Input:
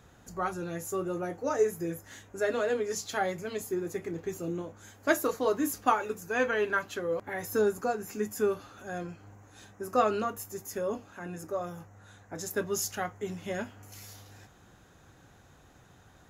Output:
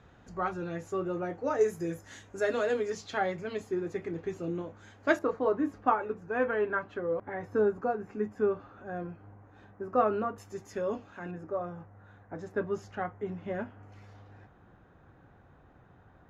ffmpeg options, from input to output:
-af "asetnsamples=n=441:p=0,asendcmd='1.61 lowpass f 7400;2.9 lowpass f 3600;5.19 lowpass f 1500;10.38 lowpass f 3900;11.31 lowpass f 1600',lowpass=3400"

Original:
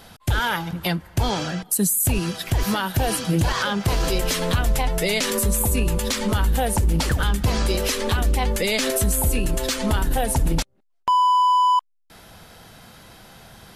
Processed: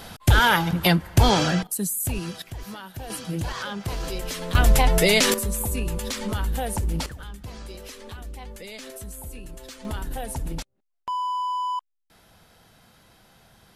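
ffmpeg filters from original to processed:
-af "asetnsamples=n=441:p=0,asendcmd='1.67 volume volume -6.5dB;2.42 volume volume -15dB;3.1 volume volume -8.5dB;4.55 volume volume 4dB;5.34 volume volume -6dB;7.06 volume volume -17.5dB;9.85 volume volume -10dB',volume=1.78"

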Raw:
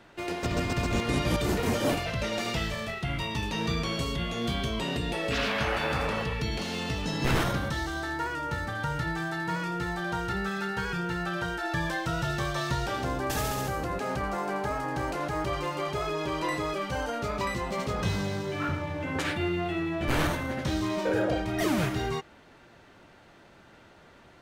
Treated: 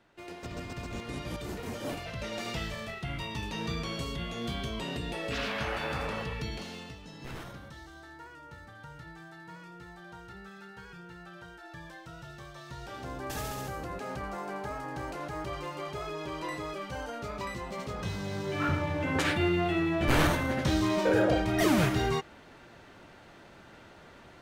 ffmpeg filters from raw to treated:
-af "volume=4.73,afade=t=in:st=1.75:d=0.76:silence=0.501187,afade=t=out:st=6.42:d=0.57:silence=0.266073,afade=t=in:st=12.65:d=0.71:silence=0.316228,afade=t=in:st=18.2:d=0.54:silence=0.375837"

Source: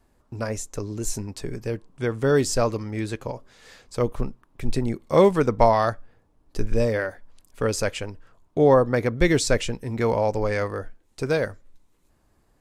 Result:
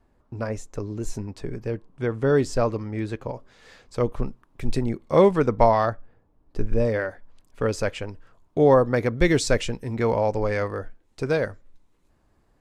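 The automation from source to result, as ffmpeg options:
-af "asetnsamples=n=441:p=0,asendcmd='3.34 lowpass f 3900;4.25 lowpass f 8800;4.84 lowpass f 3300;5.86 lowpass f 1500;6.85 lowpass f 3000;8.09 lowpass f 7600;9.95 lowpass f 4200',lowpass=f=2100:p=1"

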